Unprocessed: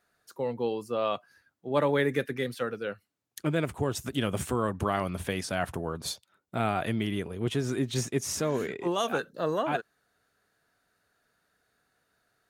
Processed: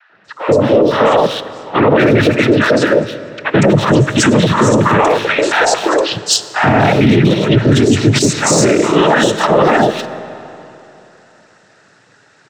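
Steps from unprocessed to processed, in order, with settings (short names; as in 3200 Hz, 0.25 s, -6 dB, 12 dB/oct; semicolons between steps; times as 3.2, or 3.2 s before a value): 4.89–6.02 steep high-pass 400 Hz; noise vocoder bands 12; in parallel at -5 dB: hard clip -30.5 dBFS, distortion -7 dB; on the sum: three bands offset in time mids, lows, highs 90/240 ms, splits 870/3300 Hz; on a send at -16 dB: reverb RT60 3.1 s, pre-delay 15 ms; on the sum: maximiser +23 dB; gain -1 dB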